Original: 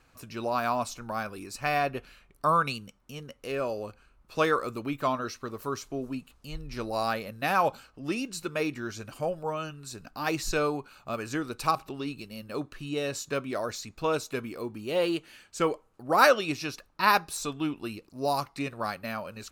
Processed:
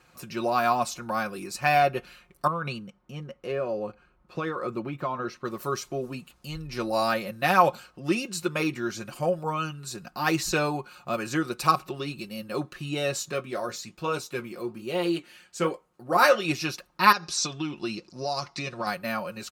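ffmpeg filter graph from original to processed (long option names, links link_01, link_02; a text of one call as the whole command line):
ffmpeg -i in.wav -filter_complex "[0:a]asettb=1/sr,asplit=3[link_01][link_02][link_03];[link_01]atrim=end=2.474[link_04];[link_02]atrim=start=2.47:end=5.45,asetpts=PTS-STARTPTS,afade=type=in:duration=0.004:curve=qsin,afade=type=out:start_time=2.976:duration=0.004:curve=qsin,lowpass=frequency=1500:poles=1,acompressor=threshold=-29dB:ratio=6:attack=3.2:release=140:knee=1:detection=peak[link_05];[link_03]atrim=start=5.446[link_06];[link_04][link_05]acrossfade=duration=0.004:curve1=hsin:curve2=qsin[link_07];[link_07][link_06]acrossfade=duration=0.004:curve1=qsin:curve2=hsin,asettb=1/sr,asplit=3[link_08][link_09][link_10];[link_08]atrim=end=13.314[link_11];[link_09]atrim=start=13.31:end=16.45,asetpts=PTS-STARTPTS,afade=type=in:duration=0.004:curve=qsin,afade=type=out:start_time=3.136:duration=0.004:curve=qsin,flanger=delay=4.6:depth=6.9:regen=-70:speed=1.2:shape=sinusoidal,asplit=2[link_12][link_13];[link_13]adelay=17,volume=-13dB[link_14];[link_12][link_14]amix=inputs=2:normalize=0,atrim=end_sample=138474[link_15];[link_10]atrim=start=16.446[link_16];[link_11][link_15]acrossfade=duration=0.004:curve1=hsin:curve2=qsin[link_17];[link_17][link_16]acrossfade=duration=0.004:curve1=qsin:curve2=hsin,asettb=1/sr,asplit=3[link_18][link_19][link_20];[link_18]atrim=end=17.124[link_21];[link_19]atrim=start=17.12:end=18.87,asetpts=PTS-STARTPTS,afade=type=in:duration=0.004:curve=qsin,afade=type=out:start_time=1.746:duration=0.004:curve=qsin,acompressor=threshold=-30dB:ratio=12:attack=3.2:release=140:knee=1:detection=peak,lowpass=frequency=5600:width_type=q:width=3[link_22];[link_20]atrim=start=18.866[link_23];[link_21][link_22]acrossfade=duration=0.004:curve1=hsin:curve2=qsin[link_24];[link_24][link_23]acrossfade=duration=0.004:curve1=qsin:curve2=hsin,highpass=68,aecho=1:1:5.6:0.65,volume=3dB" out.wav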